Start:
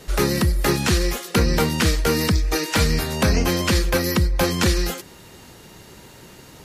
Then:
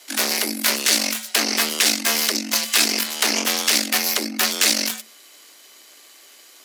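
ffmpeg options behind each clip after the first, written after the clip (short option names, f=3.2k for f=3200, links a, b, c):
-af "aeval=exprs='0.501*(cos(1*acos(clip(val(0)/0.501,-1,1)))-cos(1*PI/2))+0.0891*(cos(3*acos(clip(val(0)/0.501,-1,1)))-cos(3*PI/2))+0.0891*(cos(6*acos(clip(val(0)/0.501,-1,1)))-cos(6*PI/2))':c=same,tiltshelf=f=970:g=-10,afreqshift=220,volume=-1dB"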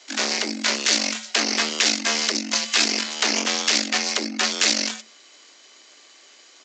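-af "aresample=16000,aresample=44100,volume=-1dB"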